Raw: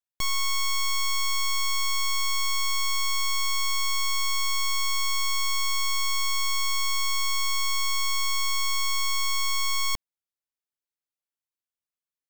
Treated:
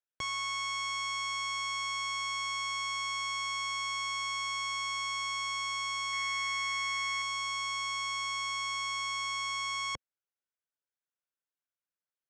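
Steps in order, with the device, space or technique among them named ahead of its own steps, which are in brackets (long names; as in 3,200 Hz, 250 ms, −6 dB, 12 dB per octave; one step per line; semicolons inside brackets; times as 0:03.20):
car door speaker (loudspeaker in its box 83–6,700 Hz, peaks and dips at 220 Hz −4 dB, 520 Hz +6 dB, 1,500 Hz +8 dB, 4,400 Hz −10 dB)
0:06.13–0:07.22: parametric band 1,900 Hz +15 dB 0.21 octaves
level −4.5 dB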